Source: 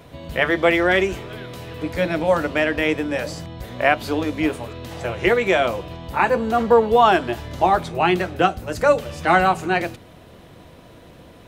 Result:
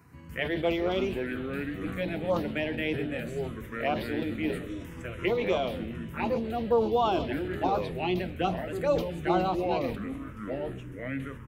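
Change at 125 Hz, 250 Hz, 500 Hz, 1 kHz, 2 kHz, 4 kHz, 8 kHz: −5.5 dB, −6.5 dB, −9.0 dB, −12.0 dB, −14.0 dB, −9.5 dB, below −10 dB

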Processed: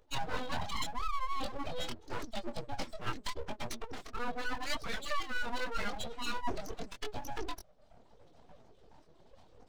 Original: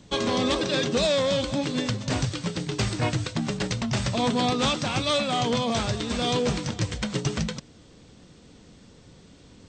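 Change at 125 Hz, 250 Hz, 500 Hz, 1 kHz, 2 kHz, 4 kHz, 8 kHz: −20.5, −19.0, −16.5, −8.5, −7.5, −14.5, −14.5 decibels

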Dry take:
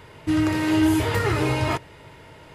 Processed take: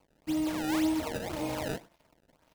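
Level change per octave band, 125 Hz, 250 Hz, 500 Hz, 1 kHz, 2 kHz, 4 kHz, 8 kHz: −18.0, −9.0, −9.5, −10.5, −12.5, −9.0, −6.0 decibels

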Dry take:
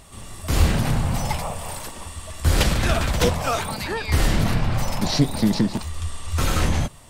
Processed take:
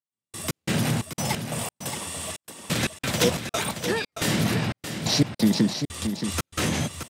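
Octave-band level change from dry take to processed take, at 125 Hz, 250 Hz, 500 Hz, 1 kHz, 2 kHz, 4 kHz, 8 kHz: −6.0, −1.0, −2.0, −5.5, −1.5, 0.0, +1.0 decibels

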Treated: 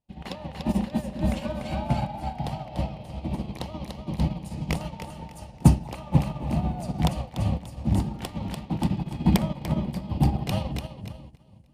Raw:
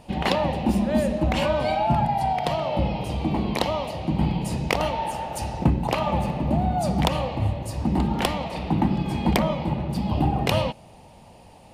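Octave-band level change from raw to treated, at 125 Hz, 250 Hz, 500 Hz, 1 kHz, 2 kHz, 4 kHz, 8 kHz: −0.5, −2.5, −10.0, −10.0, −9.5, −8.0, −3.5 decibels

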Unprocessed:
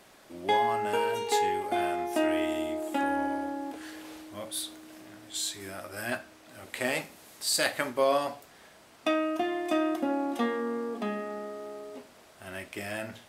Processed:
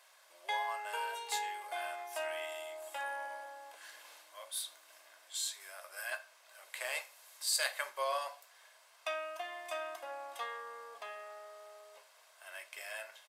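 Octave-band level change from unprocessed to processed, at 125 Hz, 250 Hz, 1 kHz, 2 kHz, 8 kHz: below −40 dB, −37.5 dB, −9.5 dB, −5.5 dB, −4.5 dB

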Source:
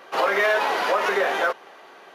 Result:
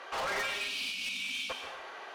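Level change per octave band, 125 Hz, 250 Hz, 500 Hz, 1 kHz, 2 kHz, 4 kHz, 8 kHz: can't be measured, −15.5 dB, −20.0 dB, −16.0 dB, −12.0 dB, −2.0 dB, −1.5 dB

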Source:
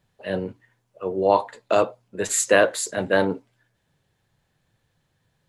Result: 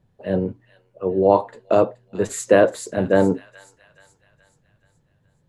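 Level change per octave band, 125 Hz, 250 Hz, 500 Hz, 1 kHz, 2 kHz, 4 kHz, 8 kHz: +7.5, +6.5, +3.5, +0.5, −4.0, −6.5, −7.5 decibels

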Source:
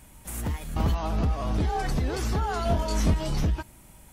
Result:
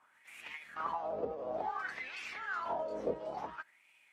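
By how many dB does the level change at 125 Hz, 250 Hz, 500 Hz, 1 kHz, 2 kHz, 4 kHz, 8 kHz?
−33.0, −19.0, −5.5, −6.0, −2.0, −14.0, −23.0 decibels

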